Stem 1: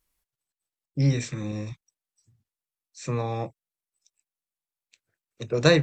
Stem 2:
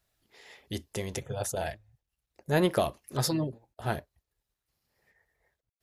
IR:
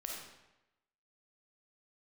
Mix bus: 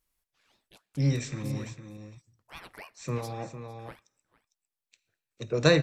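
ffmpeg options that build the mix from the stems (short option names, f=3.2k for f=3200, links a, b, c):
-filter_complex "[0:a]volume=-4dB,asplit=3[a][b][c];[b]volume=-11.5dB[d];[c]volume=-9.5dB[e];[1:a]agate=range=-33dB:threshold=-55dB:ratio=3:detection=peak,lowshelf=f=610:t=q:w=1.5:g=-9,aeval=exprs='val(0)*sin(2*PI*1000*n/s+1000*0.8/3.5*sin(2*PI*3.5*n/s))':c=same,volume=-14dB,asplit=4[f][g][h][i];[g]volume=-24dB[j];[h]volume=-19.5dB[k];[i]apad=whole_len=257041[l];[a][l]sidechaincompress=threshold=-50dB:ratio=8:attack=16:release=339[m];[2:a]atrim=start_sample=2205[n];[d][j]amix=inputs=2:normalize=0[o];[o][n]afir=irnorm=-1:irlink=0[p];[e][k]amix=inputs=2:normalize=0,aecho=0:1:454:1[q];[m][f][p][q]amix=inputs=4:normalize=0"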